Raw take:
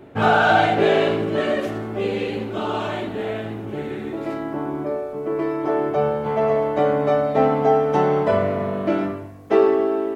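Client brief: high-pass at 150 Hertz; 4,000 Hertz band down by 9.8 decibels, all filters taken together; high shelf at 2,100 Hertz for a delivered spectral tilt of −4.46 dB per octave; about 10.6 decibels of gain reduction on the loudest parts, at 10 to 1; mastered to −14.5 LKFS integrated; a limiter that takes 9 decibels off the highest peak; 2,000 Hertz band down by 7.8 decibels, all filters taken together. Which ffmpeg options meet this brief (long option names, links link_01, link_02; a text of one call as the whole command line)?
ffmpeg -i in.wav -af "highpass=150,equalizer=frequency=2000:width_type=o:gain=-8.5,highshelf=frequency=2100:gain=-4.5,equalizer=frequency=4000:width_type=o:gain=-5,acompressor=threshold=-23dB:ratio=10,volume=16.5dB,alimiter=limit=-6dB:level=0:latency=1" out.wav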